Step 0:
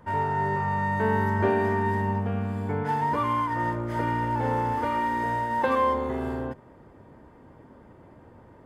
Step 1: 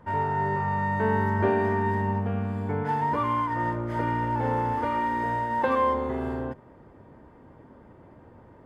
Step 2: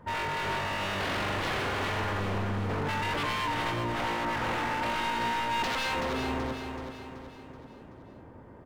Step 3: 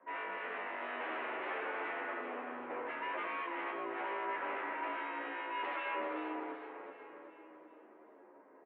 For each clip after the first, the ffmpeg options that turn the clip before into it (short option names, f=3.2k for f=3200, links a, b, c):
-af "highshelf=f=4.6k:g=-7.5"
-filter_complex "[0:a]aeval=exprs='0.0447*(abs(mod(val(0)/0.0447+3,4)-2)-1)':c=same,asplit=2[a][b];[b]aecho=0:1:379|758|1137|1516|1895|2274:0.473|0.232|0.114|0.0557|0.0273|0.0134[c];[a][c]amix=inputs=2:normalize=0"
-filter_complex "[0:a]highpass=f=250:t=q:w=0.5412,highpass=f=250:t=q:w=1.307,lowpass=f=2.5k:t=q:w=0.5176,lowpass=f=2.5k:t=q:w=0.7071,lowpass=f=2.5k:t=q:w=1.932,afreqshift=51,asplit=2[a][b];[b]adelay=11,afreqshift=-0.61[c];[a][c]amix=inputs=2:normalize=1,volume=-4.5dB"